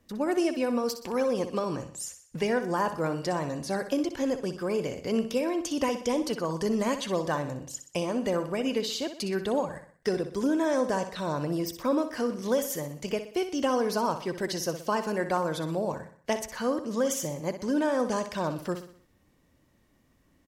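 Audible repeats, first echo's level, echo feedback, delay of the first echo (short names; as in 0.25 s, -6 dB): 4, -10.5 dB, 46%, 62 ms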